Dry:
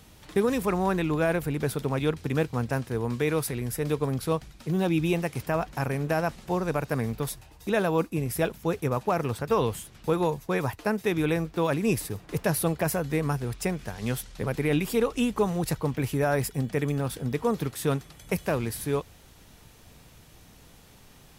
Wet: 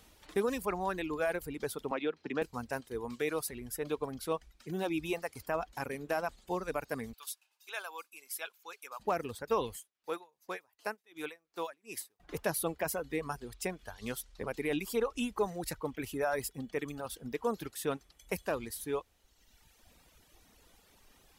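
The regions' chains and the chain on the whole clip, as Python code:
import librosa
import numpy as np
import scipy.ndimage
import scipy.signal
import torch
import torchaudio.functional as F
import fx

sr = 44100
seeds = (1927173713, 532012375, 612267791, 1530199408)

y = fx.chain(x, sr, fx.bandpass_edges(low_hz=180.0, high_hz=3600.0),
    fx.band_squash(depth_pct=70), at=(1.91, 2.42))
y = fx.chain(y, sr, fx.highpass(hz=1400.0, slope=12),
    fx.notch(hz=1900.0, q=7.5), at=(7.13, 9.0))
y = fx.chain(y, sr, fx.highpass(hz=680.0, slope=6),
    fx.tremolo_db(hz=2.7, depth_db=22), at=(9.76, 12.2))
y = fx.dereverb_blind(y, sr, rt60_s=1.5)
y = fx.peak_eq(y, sr, hz=130.0, db=-12.5, octaves=1.1)
y = y * 10.0 ** (-5.0 / 20.0)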